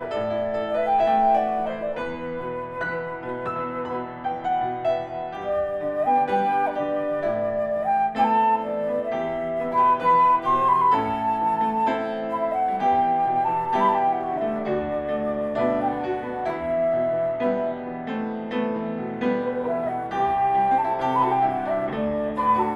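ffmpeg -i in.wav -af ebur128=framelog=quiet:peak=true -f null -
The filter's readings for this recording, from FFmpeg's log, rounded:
Integrated loudness:
  I:         -23.5 LUFS
  Threshold: -33.5 LUFS
Loudness range:
  LRA:         5.6 LU
  Threshold: -43.6 LUFS
  LRA low:   -26.5 LUFS
  LRA high:  -20.9 LUFS
True peak:
  Peak:       -9.0 dBFS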